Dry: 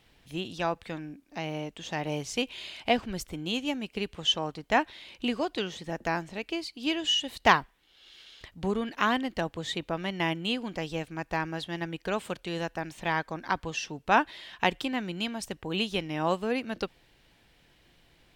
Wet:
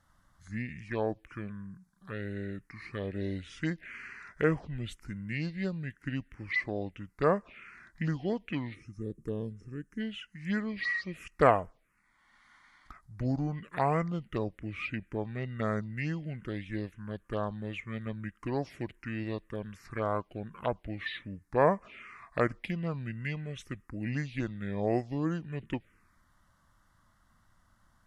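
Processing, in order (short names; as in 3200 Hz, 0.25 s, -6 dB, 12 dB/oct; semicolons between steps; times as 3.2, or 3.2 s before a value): spectral gain 5.72–6.54, 810–7800 Hz -14 dB; wide varispeed 0.654×; envelope phaser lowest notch 410 Hz, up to 3700 Hz, full sweep at -22 dBFS; gain -2 dB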